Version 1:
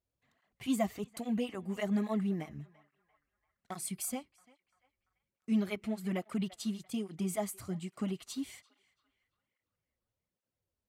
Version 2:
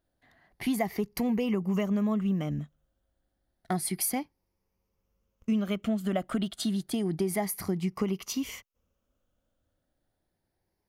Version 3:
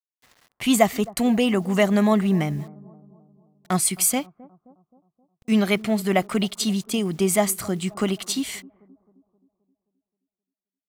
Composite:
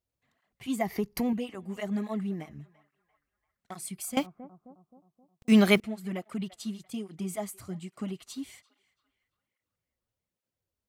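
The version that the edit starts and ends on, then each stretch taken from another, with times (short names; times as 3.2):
1
0.81–1.33 from 2
4.17–5.8 from 3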